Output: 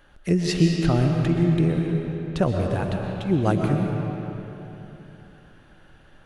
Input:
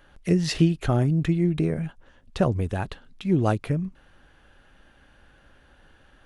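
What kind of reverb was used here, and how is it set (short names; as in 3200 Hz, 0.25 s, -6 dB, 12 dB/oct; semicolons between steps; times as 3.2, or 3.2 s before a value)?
digital reverb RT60 3.4 s, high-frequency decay 0.7×, pre-delay 85 ms, DRR 1.5 dB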